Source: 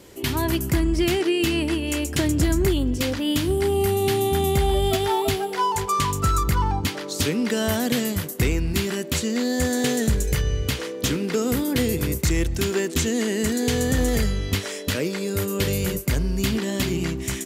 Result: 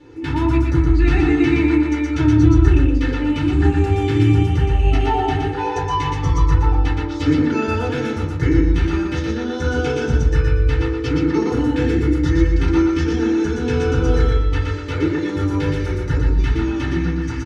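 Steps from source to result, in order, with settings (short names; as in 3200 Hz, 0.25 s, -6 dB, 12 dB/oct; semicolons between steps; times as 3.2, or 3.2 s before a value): comb 2.3 ms, depth 70%; formant shift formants -3 st; air absorption 170 m; feedback echo 0.119 s, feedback 27%, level -3.5 dB; FDN reverb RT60 0.35 s, low-frequency decay 1.4×, high-frequency decay 0.35×, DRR -5.5 dB; gain -6.5 dB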